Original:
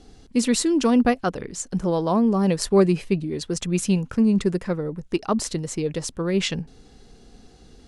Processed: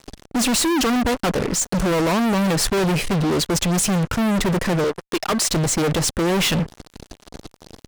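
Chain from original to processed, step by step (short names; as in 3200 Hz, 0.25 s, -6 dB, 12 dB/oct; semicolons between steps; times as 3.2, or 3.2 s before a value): 4.84–5.5 HPF 480 Hz 12 dB/oct; fuzz box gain 39 dB, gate -43 dBFS; gain -4.5 dB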